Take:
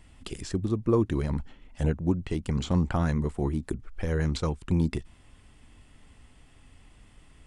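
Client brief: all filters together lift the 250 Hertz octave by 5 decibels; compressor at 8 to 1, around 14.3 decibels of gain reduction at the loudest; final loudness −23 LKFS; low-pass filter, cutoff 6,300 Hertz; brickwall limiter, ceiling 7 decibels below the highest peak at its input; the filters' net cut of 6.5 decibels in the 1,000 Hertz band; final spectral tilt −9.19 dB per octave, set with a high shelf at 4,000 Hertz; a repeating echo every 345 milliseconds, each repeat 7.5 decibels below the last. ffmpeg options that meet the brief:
ffmpeg -i in.wav -af "lowpass=6300,equalizer=frequency=250:width_type=o:gain=7.5,equalizer=frequency=1000:width_type=o:gain=-8.5,highshelf=frequency=4000:gain=-6,acompressor=threshold=-31dB:ratio=8,alimiter=level_in=4dB:limit=-24dB:level=0:latency=1,volume=-4dB,aecho=1:1:345|690|1035|1380|1725:0.422|0.177|0.0744|0.0312|0.0131,volume=15dB" out.wav

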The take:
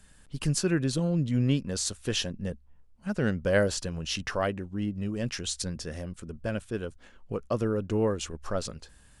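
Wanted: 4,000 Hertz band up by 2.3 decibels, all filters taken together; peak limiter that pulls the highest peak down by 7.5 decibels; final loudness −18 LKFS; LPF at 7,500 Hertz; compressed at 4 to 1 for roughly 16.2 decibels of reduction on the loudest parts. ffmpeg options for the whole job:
ffmpeg -i in.wav -af "lowpass=7500,equalizer=frequency=4000:width_type=o:gain=3.5,acompressor=threshold=-41dB:ratio=4,volume=26.5dB,alimiter=limit=-7dB:level=0:latency=1" out.wav

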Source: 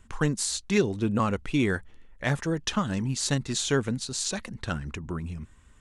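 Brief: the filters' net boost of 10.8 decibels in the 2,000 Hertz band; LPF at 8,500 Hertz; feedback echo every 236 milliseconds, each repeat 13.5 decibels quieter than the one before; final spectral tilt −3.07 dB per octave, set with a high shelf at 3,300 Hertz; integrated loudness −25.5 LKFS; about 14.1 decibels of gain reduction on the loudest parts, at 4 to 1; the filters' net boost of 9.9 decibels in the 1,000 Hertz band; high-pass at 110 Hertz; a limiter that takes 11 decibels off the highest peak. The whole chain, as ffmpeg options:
ffmpeg -i in.wav -af "highpass=110,lowpass=8500,equalizer=frequency=1000:width_type=o:gain=8.5,equalizer=frequency=2000:width_type=o:gain=8.5,highshelf=frequency=3300:gain=7.5,acompressor=threshold=-32dB:ratio=4,alimiter=level_in=1dB:limit=-24dB:level=0:latency=1,volume=-1dB,aecho=1:1:236|472:0.211|0.0444,volume=11dB" out.wav

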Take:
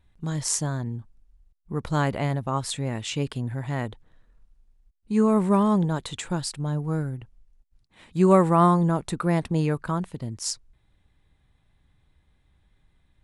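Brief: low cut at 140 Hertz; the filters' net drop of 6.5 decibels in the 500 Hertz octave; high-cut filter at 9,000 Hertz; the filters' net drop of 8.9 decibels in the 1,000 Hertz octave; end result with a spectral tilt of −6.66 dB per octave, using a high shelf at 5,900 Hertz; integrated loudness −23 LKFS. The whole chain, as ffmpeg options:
ffmpeg -i in.wav -af "highpass=140,lowpass=9000,equalizer=frequency=500:width_type=o:gain=-6.5,equalizer=frequency=1000:width_type=o:gain=-9,highshelf=frequency=5900:gain=-4,volume=5.5dB" out.wav

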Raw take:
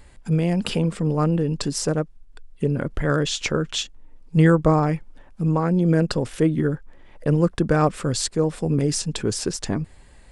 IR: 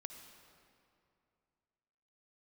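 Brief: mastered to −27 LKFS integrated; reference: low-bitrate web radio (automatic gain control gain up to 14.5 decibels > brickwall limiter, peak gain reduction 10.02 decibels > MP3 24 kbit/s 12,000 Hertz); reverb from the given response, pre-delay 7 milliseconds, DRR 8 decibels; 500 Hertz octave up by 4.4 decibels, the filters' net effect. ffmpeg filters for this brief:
-filter_complex "[0:a]equalizer=frequency=500:width_type=o:gain=5,asplit=2[link_01][link_02];[1:a]atrim=start_sample=2205,adelay=7[link_03];[link_02][link_03]afir=irnorm=-1:irlink=0,volume=-4dB[link_04];[link_01][link_04]amix=inputs=2:normalize=0,dynaudnorm=maxgain=14.5dB,alimiter=limit=-13dB:level=0:latency=1,volume=-3dB" -ar 12000 -c:a libmp3lame -b:a 24k

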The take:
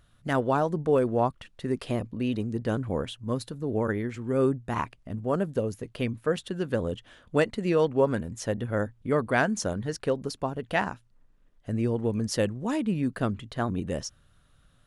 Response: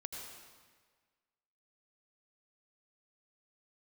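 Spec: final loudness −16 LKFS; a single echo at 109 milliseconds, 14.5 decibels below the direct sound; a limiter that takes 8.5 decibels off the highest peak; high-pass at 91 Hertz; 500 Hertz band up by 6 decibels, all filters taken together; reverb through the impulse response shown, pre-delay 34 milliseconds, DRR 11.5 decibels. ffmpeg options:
-filter_complex "[0:a]highpass=91,equalizer=frequency=500:width_type=o:gain=7,alimiter=limit=-14.5dB:level=0:latency=1,aecho=1:1:109:0.188,asplit=2[link_01][link_02];[1:a]atrim=start_sample=2205,adelay=34[link_03];[link_02][link_03]afir=irnorm=-1:irlink=0,volume=-10dB[link_04];[link_01][link_04]amix=inputs=2:normalize=0,volume=11dB"

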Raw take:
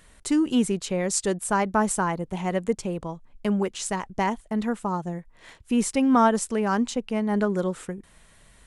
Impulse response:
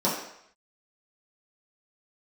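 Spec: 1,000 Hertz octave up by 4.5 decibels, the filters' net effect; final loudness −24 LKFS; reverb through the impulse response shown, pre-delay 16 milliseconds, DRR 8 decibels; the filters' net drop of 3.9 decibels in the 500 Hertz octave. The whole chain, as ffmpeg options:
-filter_complex "[0:a]equalizer=frequency=500:width_type=o:gain=-7.5,equalizer=frequency=1000:width_type=o:gain=7.5,asplit=2[link_01][link_02];[1:a]atrim=start_sample=2205,adelay=16[link_03];[link_02][link_03]afir=irnorm=-1:irlink=0,volume=-21dB[link_04];[link_01][link_04]amix=inputs=2:normalize=0,volume=-0.5dB"

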